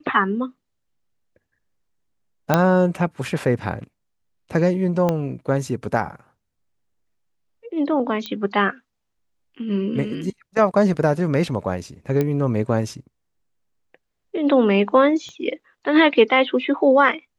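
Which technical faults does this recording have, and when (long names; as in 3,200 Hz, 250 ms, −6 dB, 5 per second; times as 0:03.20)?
0:02.54: click −3 dBFS
0:05.09: click −9 dBFS
0:08.26: click −14 dBFS
0:12.21: click −10 dBFS
0:15.29: click −27 dBFS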